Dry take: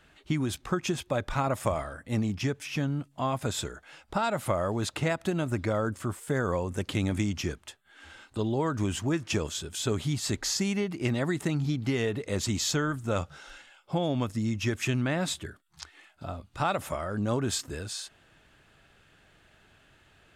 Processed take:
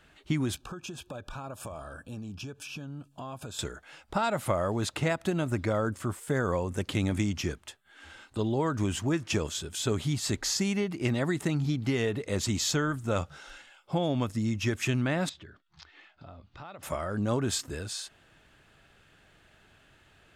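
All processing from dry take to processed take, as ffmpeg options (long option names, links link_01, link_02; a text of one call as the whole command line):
ffmpeg -i in.wav -filter_complex "[0:a]asettb=1/sr,asplit=3[link_01][link_02][link_03];[link_01]atrim=end=0.554[link_04];[link_02]atrim=start=0.55:end=3.59,asetpts=PTS-STARTPTS,afade=type=in:duration=0.004:curve=qsin,afade=type=out:start_time=3.036:duration=0.004:curve=qsin,acompressor=threshold=-38dB:ratio=4:attack=3.2:release=140:knee=1:detection=peak,asuperstop=centerf=2000:order=20:qfactor=3.8[link_05];[link_03]atrim=start=3.586[link_06];[link_04][link_05]acrossfade=duration=0.004:curve1=hsin:curve2=qsin[link_07];[link_07][link_06]acrossfade=duration=0.004:curve1=qsin:curve2=hsin,asettb=1/sr,asplit=3[link_08][link_09][link_10];[link_08]atrim=end=15.294[link_11];[link_09]atrim=start=15.29:end=16.83,asetpts=PTS-STARTPTS,afade=type=in:duration=0.004:curve=qsin,afade=type=out:start_time=1.536:duration=0.004:curve=qsin,lowpass=frequency=5200:width=0.5412,lowpass=frequency=5200:width=1.3066,acompressor=threshold=-47dB:ratio=3:attack=3.2:release=140:knee=1:detection=peak[link_12];[link_10]atrim=start=16.826[link_13];[link_11][link_12]acrossfade=duration=0.004:curve1=hsin:curve2=qsin[link_14];[link_14][link_13]acrossfade=duration=0.004:curve1=qsin:curve2=hsin" out.wav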